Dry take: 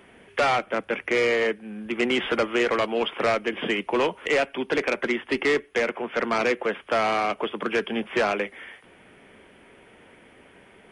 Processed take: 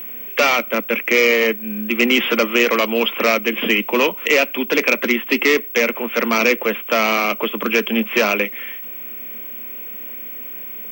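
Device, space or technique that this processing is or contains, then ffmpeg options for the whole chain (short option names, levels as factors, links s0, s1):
old television with a line whistle: -af "highpass=f=200:w=0.5412,highpass=f=200:w=1.3066,equalizer=f=220:t=q:w=4:g=5,equalizer=f=380:t=q:w=4:g=-4,equalizer=f=770:t=q:w=4:g=-9,equalizer=f=1600:t=q:w=4:g=-5,equalizer=f=2500:t=q:w=4:g=7,equalizer=f=5800:t=q:w=4:g=9,lowpass=f=8500:w=0.5412,lowpass=f=8500:w=1.3066,aeval=exprs='val(0)+0.0158*sin(2*PI*15734*n/s)':c=same,volume=2.37"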